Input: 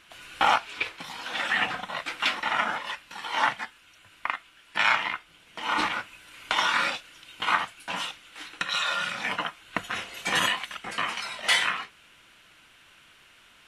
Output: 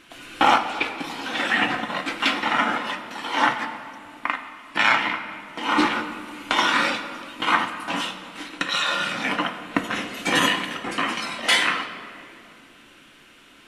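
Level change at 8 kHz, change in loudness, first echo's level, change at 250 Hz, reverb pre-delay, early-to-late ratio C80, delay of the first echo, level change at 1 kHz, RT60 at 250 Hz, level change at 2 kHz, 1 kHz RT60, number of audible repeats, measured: +3.5 dB, +4.5 dB, no echo audible, +14.0 dB, 4 ms, 10.0 dB, no echo audible, +5.0 dB, 3.4 s, +4.0 dB, 2.3 s, no echo audible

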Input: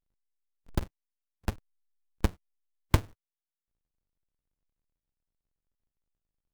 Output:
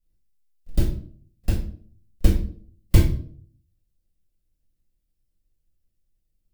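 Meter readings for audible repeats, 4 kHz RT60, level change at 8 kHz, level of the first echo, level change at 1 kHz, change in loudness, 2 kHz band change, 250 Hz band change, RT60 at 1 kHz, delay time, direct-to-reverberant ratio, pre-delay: no echo audible, 0.35 s, +7.0 dB, no echo audible, −4.5 dB, +8.5 dB, +1.5 dB, +9.0 dB, 0.45 s, no echo audible, −7.5 dB, 4 ms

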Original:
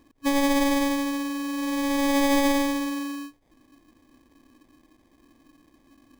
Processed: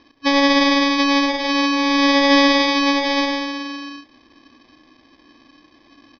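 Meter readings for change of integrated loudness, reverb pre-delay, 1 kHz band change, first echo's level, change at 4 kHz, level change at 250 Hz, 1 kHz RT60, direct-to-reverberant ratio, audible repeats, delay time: +8.0 dB, no reverb audible, +10.0 dB, −9.5 dB, +15.0 dB, +6.5 dB, no reverb audible, no reverb audible, 2, 68 ms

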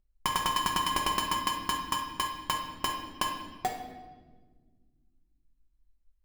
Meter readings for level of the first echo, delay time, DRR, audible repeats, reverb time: no echo audible, no echo audible, 0.5 dB, no echo audible, 1.5 s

